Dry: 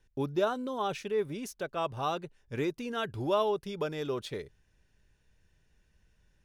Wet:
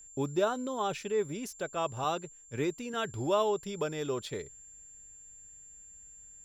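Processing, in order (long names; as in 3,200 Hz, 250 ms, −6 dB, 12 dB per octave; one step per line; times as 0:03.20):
steady tone 7,300 Hz −50 dBFS
0:02.04–0:02.94: multiband upward and downward expander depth 40%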